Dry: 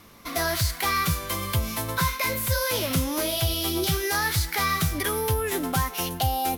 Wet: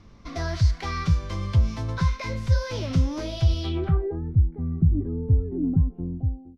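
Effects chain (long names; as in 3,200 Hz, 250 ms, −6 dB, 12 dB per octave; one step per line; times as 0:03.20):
fade-out on the ending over 0.61 s
low-pass filter sweep 5,700 Hz → 270 Hz, 0:03.60–0:04.22
RIAA equalisation playback
level −7 dB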